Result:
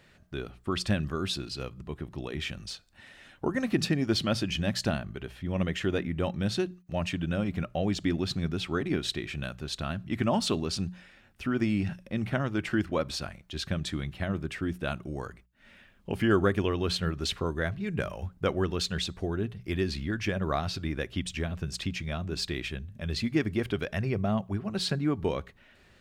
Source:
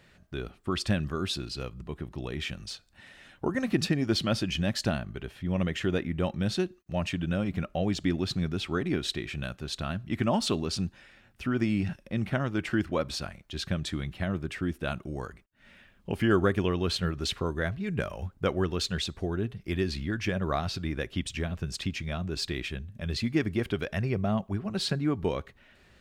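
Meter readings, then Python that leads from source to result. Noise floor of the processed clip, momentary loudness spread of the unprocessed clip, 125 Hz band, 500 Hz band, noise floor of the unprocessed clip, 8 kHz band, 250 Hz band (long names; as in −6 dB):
−60 dBFS, 9 LU, −0.5 dB, 0.0 dB, −61 dBFS, 0.0 dB, −0.5 dB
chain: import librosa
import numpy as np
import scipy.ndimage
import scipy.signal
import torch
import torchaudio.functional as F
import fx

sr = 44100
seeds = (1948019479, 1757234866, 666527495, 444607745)

y = fx.hum_notches(x, sr, base_hz=60, count=3)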